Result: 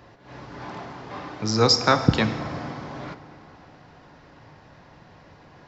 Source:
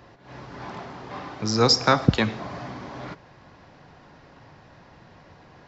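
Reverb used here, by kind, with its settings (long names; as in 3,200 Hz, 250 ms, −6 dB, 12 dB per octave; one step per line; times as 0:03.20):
feedback delay network reverb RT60 3 s, high-frequency decay 0.6×, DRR 10.5 dB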